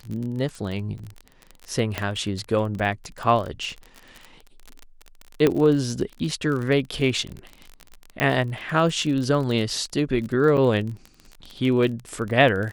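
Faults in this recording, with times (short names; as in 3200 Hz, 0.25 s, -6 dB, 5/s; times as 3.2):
crackle 29/s -28 dBFS
0.99 gap 4.5 ms
1.98 pop -10 dBFS
5.47 pop -7 dBFS
8.2 pop -8 dBFS
10.57–10.58 gap 6.5 ms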